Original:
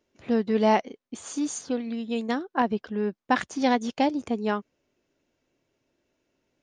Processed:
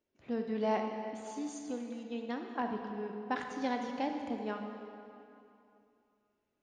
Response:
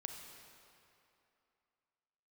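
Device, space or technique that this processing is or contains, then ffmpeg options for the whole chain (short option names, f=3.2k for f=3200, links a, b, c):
swimming-pool hall: -filter_complex "[1:a]atrim=start_sample=2205[a];[0:a][a]afir=irnorm=-1:irlink=0,highshelf=f=5.8k:g=-7,asettb=1/sr,asplit=3[b][c][d];[b]atrim=end=2.034[e];[c]atrim=start=2.03:end=2.49,asetpts=PTS-STARTPTS,afade=t=in:d=0.004:c=qsin,afade=t=out:st=0.456:d=0.004:c=qsin,lowpass=6k[f];[d]atrim=start=2.486[g];[e][f]acrossfade=d=0.004:c1=hsin:c2=qsin[h];[h][g]acrossfade=d=0.004:c1=qsin:c2=hsin,volume=-7.5dB"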